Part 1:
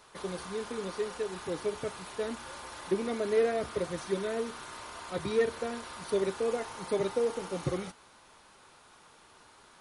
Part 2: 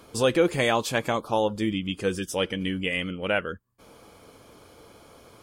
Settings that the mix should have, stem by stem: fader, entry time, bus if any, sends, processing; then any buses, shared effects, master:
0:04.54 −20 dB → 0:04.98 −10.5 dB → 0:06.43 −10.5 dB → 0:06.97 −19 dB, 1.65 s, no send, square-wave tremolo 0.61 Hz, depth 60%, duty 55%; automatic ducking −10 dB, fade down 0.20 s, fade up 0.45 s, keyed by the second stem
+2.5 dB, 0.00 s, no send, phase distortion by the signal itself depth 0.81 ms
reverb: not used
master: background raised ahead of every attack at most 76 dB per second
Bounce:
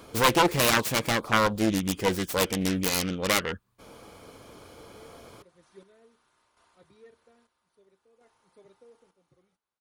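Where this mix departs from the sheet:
stem 1 −20.0 dB → −27.5 dB
master: missing background raised ahead of every attack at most 76 dB per second

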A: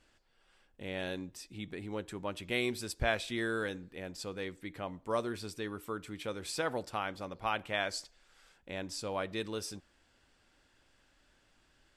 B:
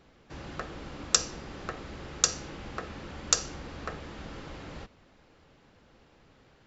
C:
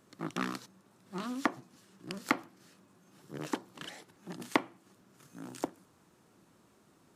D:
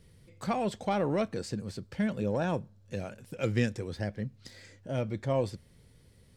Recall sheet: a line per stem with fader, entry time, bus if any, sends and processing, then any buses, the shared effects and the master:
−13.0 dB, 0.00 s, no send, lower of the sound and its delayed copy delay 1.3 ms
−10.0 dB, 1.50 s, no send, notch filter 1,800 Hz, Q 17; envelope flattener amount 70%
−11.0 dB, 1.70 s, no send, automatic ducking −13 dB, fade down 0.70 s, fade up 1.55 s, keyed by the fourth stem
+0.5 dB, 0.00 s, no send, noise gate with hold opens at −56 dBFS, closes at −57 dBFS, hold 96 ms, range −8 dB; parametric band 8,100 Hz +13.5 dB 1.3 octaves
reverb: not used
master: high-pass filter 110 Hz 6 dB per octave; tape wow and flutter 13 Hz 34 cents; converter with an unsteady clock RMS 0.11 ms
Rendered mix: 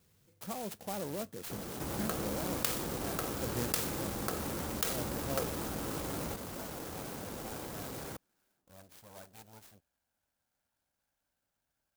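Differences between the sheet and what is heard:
stem C −11.0 dB → −19.5 dB
stem D +0.5 dB → −9.5 dB

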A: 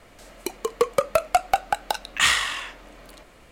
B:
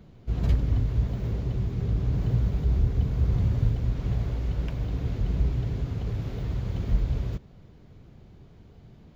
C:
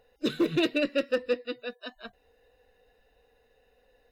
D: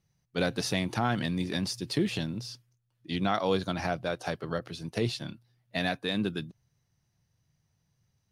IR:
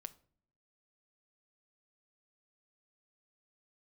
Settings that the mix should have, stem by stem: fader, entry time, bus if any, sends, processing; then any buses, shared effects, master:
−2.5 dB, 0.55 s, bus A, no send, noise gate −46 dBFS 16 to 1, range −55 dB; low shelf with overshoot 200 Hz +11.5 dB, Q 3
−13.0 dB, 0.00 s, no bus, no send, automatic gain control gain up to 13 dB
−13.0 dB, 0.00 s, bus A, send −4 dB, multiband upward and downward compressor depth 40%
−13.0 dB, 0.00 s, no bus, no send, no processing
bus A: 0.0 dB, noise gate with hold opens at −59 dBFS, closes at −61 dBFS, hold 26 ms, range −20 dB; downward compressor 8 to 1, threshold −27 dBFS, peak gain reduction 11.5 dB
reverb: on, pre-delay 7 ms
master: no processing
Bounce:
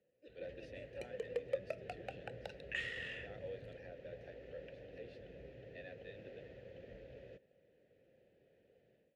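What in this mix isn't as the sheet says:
stem C −13.0 dB → −21.0 dB
master: extra formant filter e

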